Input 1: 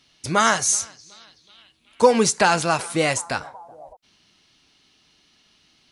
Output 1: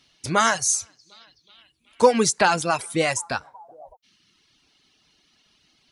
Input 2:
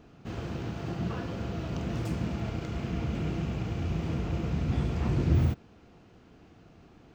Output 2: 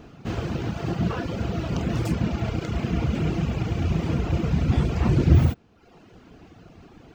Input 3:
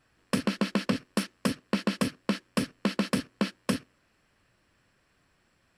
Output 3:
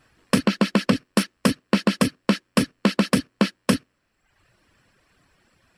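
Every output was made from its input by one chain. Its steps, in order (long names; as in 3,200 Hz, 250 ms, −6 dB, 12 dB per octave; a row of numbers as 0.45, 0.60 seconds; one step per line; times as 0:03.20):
reverb reduction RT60 0.86 s
normalise the peak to −3 dBFS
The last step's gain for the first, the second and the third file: −0.5, +9.0, +8.5 decibels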